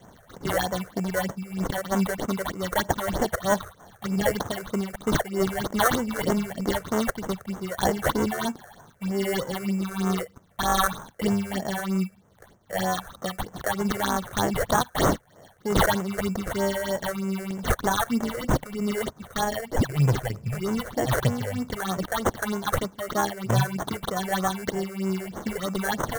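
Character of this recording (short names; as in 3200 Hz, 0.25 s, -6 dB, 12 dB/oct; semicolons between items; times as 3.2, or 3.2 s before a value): tremolo triangle 2.6 Hz, depth 45%; aliases and images of a low sample rate 2500 Hz, jitter 0%; phasing stages 6, 3.2 Hz, lowest notch 230–4200 Hz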